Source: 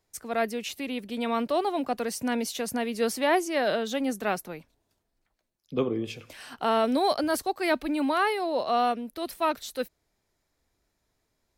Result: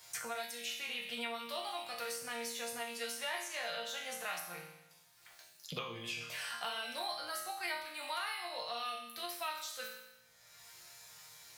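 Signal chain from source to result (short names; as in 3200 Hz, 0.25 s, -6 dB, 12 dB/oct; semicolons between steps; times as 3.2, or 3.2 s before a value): HPF 79 Hz 12 dB/oct; passive tone stack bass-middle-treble 10-0-10; resonator bank A#2 sus4, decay 0.63 s; three-band squash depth 100%; gain +15 dB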